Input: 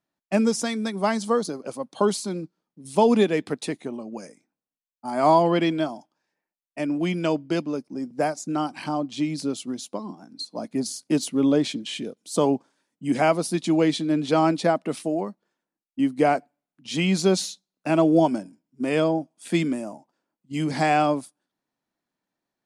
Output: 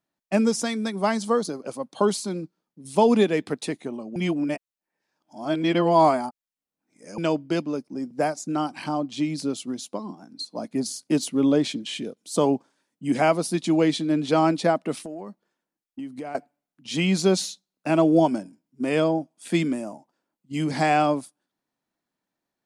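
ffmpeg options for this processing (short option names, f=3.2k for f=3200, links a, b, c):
-filter_complex "[0:a]asettb=1/sr,asplit=3[a][b][c];[a]atrim=end=15.024[d];[b]atrim=start=15.02:end=16.35,asetpts=PTS-STARTPTS,afade=t=in:d=0.004:c=qsin,afade=t=out:st=1.326:d=0.004:c=qsin,acompressor=threshold=-32dB:ratio=6:attack=3.2:release=140:knee=1:detection=peak[e];[c]atrim=start=16.346[f];[d][e]acrossfade=d=0.004:c1=hsin:c2=qsin[g];[g][f]acrossfade=d=0.004:c1=qsin:c2=hsin,asplit=3[h][i][j];[h]atrim=end=4.162[k];[i]atrim=start=4.158:end=7.182,asetpts=PTS-STARTPTS,areverse[l];[j]atrim=start=7.178[m];[k][l]acrossfade=d=0.004:c1=hsin:c2=hsin[n];[n][m]acrossfade=d=0.004:c1=hsin:c2=hsin"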